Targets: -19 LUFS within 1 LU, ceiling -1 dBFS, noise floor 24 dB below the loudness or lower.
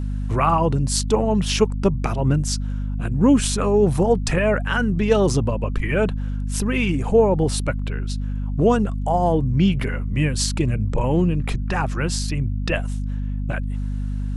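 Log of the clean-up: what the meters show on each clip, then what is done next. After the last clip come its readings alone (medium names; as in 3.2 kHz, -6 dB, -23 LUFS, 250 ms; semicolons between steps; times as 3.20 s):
hum 50 Hz; highest harmonic 250 Hz; hum level -22 dBFS; loudness -21.5 LUFS; peak level -4.0 dBFS; loudness target -19.0 LUFS
-> hum notches 50/100/150/200/250 Hz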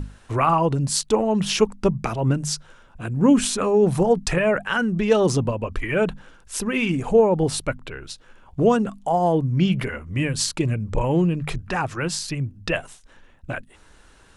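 hum not found; loudness -22.0 LUFS; peak level -5.0 dBFS; loudness target -19.0 LUFS
-> trim +3 dB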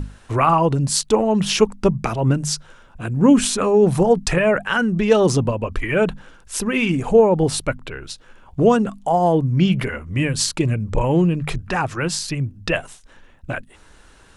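loudness -19.0 LUFS; peak level -2.0 dBFS; noise floor -49 dBFS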